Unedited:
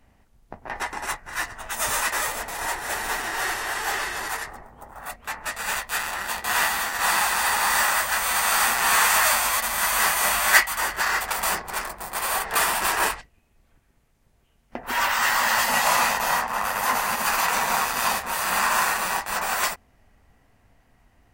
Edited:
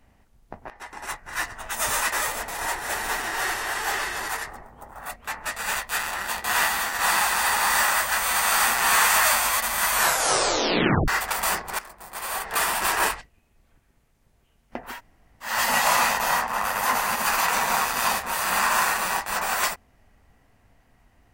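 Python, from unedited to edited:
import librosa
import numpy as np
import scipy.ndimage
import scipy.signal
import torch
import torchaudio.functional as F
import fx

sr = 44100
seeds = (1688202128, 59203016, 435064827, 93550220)

y = fx.edit(x, sr, fx.fade_in_from(start_s=0.7, length_s=0.65, floor_db=-20.5),
    fx.tape_stop(start_s=9.93, length_s=1.15),
    fx.fade_in_from(start_s=11.79, length_s=1.13, floor_db=-13.0),
    fx.room_tone_fill(start_s=14.89, length_s=0.63, crossfade_s=0.24), tone=tone)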